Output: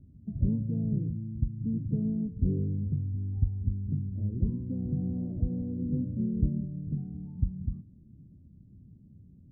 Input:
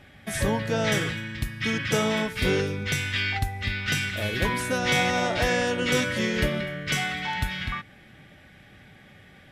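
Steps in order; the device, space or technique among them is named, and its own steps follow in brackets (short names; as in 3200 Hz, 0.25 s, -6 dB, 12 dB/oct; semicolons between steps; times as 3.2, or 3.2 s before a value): the neighbour's flat through the wall (LPF 260 Hz 24 dB/oct; bell 81 Hz +3.5 dB 0.63 oct)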